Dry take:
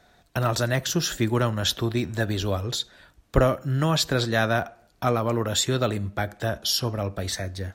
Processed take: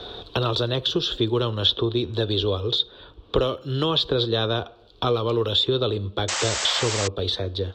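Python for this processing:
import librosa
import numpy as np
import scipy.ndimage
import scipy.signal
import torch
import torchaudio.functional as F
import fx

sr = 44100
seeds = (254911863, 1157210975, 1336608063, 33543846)

y = fx.curve_eq(x, sr, hz=(110.0, 160.0, 250.0, 450.0, 650.0, 1100.0, 2000.0, 3500.0, 6500.0, 15000.0), db=(0, -8, -4, 9, -7, 1, -16, 11, -19, -26))
y = fx.spec_paint(y, sr, seeds[0], shape='noise', start_s=6.28, length_s=0.8, low_hz=490.0, high_hz=8200.0, level_db=-29.0)
y = fx.band_squash(y, sr, depth_pct=70)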